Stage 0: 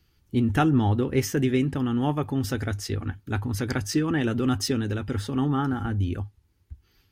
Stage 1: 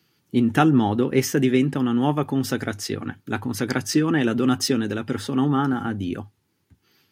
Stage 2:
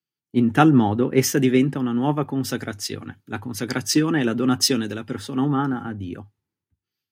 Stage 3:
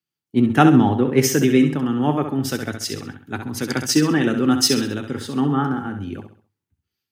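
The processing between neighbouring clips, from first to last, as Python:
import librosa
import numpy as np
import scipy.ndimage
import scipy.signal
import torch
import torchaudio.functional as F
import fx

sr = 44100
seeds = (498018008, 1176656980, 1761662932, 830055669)

y1 = scipy.signal.sosfilt(scipy.signal.butter(4, 140.0, 'highpass', fs=sr, output='sos'), x)
y1 = y1 * librosa.db_to_amplitude(4.5)
y2 = fx.band_widen(y1, sr, depth_pct=70)
y3 = fx.echo_feedback(y2, sr, ms=66, feedback_pct=38, wet_db=-8.0)
y3 = y3 * librosa.db_to_amplitude(1.5)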